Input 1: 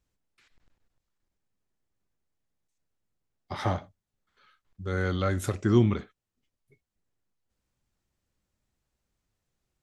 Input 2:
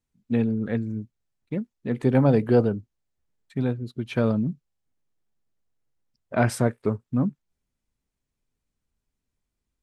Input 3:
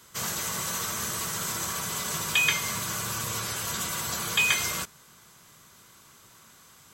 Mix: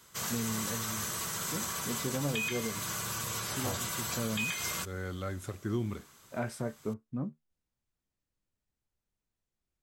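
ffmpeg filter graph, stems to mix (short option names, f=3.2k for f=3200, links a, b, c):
-filter_complex "[0:a]volume=-10dB[a];[1:a]flanger=delay=9:depth=4.6:regen=55:speed=0.22:shape=sinusoidal,volume=-7dB[b];[2:a]volume=-4.5dB[c];[a][b][c]amix=inputs=3:normalize=0,alimiter=limit=-22.5dB:level=0:latency=1:release=175"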